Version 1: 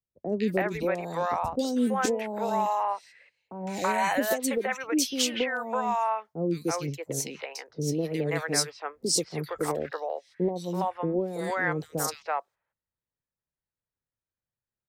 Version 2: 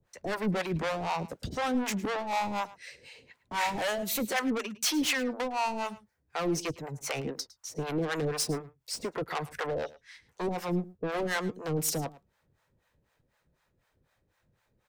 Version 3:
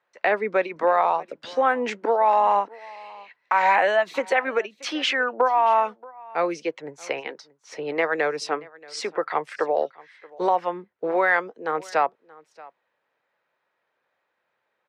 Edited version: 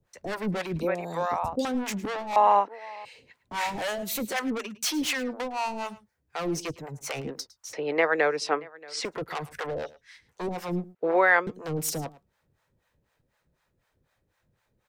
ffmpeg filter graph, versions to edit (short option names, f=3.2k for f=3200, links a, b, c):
-filter_complex "[2:a]asplit=3[a][b][c];[1:a]asplit=5[d][e][f][g][h];[d]atrim=end=0.802[i];[0:a]atrim=start=0.798:end=1.652[j];[e]atrim=start=1.648:end=2.362[k];[a]atrim=start=2.358:end=3.052[l];[f]atrim=start=3.048:end=7.732[m];[b]atrim=start=7.728:end=9.052[n];[g]atrim=start=9.048:end=10.952[o];[c]atrim=start=10.948:end=11.472[p];[h]atrim=start=11.468[q];[i][j]acrossfade=d=0.004:c1=hsin:c2=hsin[r];[r][k]acrossfade=d=0.004:c1=hsin:c2=hsin[s];[s][l]acrossfade=d=0.004:c1=hsin:c2=hsin[t];[t][m]acrossfade=d=0.004:c1=hsin:c2=hsin[u];[u][n]acrossfade=d=0.004:c1=hsin:c2=hsin[v];[v][o]acrossfade=d=0.004:c1=hsin:c2=hsin[w];[w][p]acrossfade=d=0.004:c1=hsin:c2=hsin[x];[x][q]acrossfade=d=0.004:c1=hsin:c2=hsin"